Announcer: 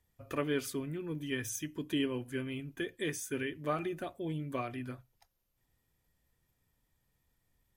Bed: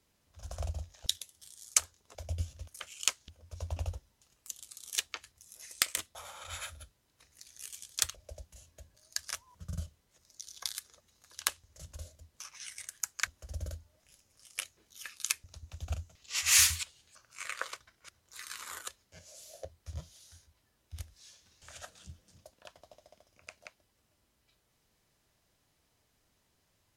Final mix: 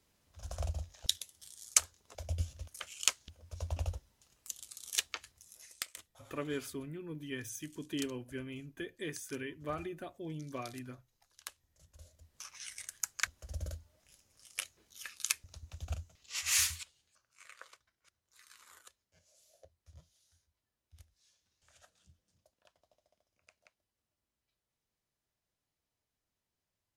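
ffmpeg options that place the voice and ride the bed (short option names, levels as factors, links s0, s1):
-filter_complex "[0:a]adelay=6000,volume=0.562[s0];[1:a]volume=5.01,afade=t=out:st=5.3:d=0.59:silence=0.177828,afade=t=in:st=11.92:d=0.55:silence=0.199526,afade=t=out:st=15.57:d=1.74:silence=0.188365[s1];[s0][s1]amix=inputs=2:normalize=0"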